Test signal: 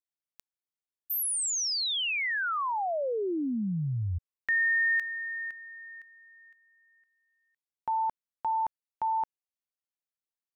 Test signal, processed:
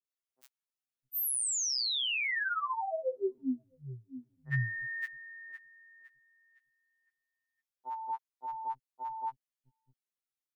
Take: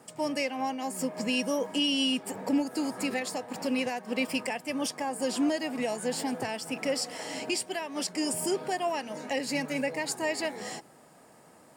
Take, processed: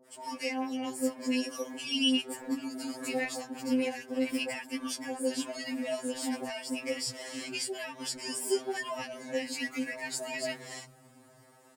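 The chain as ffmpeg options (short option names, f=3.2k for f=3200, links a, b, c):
-filter_complex "[0:a]lowshelf=f=200:g=-3.5,acrossover=split=180|770[a][b][c];[c]adelay=50[d];[a]adelay=660[e];[e][b][d]amix=inputs=3:normalize=0,afftfilt=real='re*2.45*eq(mod(b,6),0)':imag='im*2.45*eq(mod(b,6),0)':win_size=2048:overlap=0.75"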